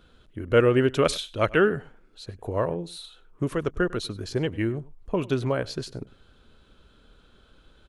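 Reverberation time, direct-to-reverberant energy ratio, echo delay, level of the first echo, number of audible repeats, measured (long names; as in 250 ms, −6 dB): no reverb audible, no reverb audible, 100 ms, −21.5 dB, 1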